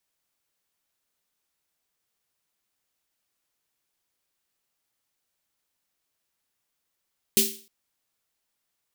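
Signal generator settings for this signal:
synth snare length 0.31 s, tones 220 Hz, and 390 Hz, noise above 2,700 Hz, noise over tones 7 dB, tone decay 0.37 s, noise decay 0.40 s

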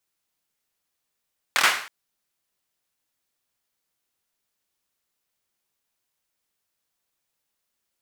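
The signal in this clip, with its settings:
synth clap length 0.32 s, apart 25 ms, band 1,600 Hz, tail 0.50 s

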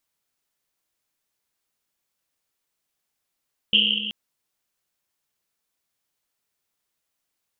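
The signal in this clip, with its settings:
drum after Risset length 0.38 s, pitch 210 Hz, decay 2.58 s, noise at 3,000 Hz, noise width 480 Hz, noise 80%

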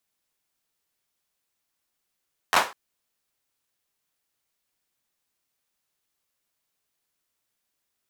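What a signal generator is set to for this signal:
synth clap length 0.20 s, apart 11 ms, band 940 Hz, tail 0.29 s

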